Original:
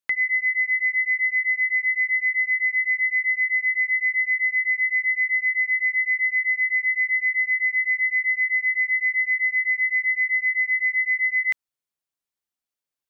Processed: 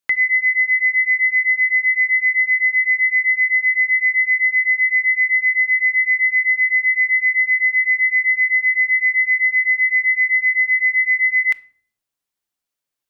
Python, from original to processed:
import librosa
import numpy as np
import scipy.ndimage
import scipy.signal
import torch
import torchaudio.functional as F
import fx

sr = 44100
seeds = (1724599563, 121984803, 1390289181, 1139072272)

y = fx.room_shoebox(x, sr, seeds[0], volume_m3=670.0, walls='furnished', distance_m=0.35)
y = y * librosa.db_to_amplitude(5.0)